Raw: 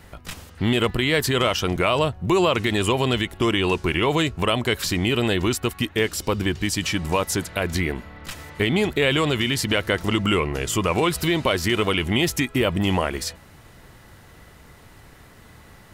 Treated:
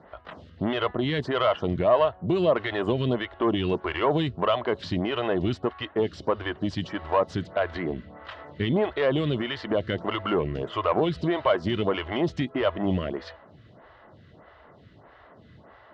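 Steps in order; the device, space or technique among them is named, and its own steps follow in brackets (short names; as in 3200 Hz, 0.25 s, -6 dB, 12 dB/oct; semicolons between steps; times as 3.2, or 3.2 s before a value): vibe pedal into a guitar amplifier (photocell phaser 1.6 Hz; tube stage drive 14 dB, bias 0.25; speaker cabinet 75–3500 Hz, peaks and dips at 630 Hz +8 dB, 1100 Hz +3 dB, 2400 Hz -9 dB)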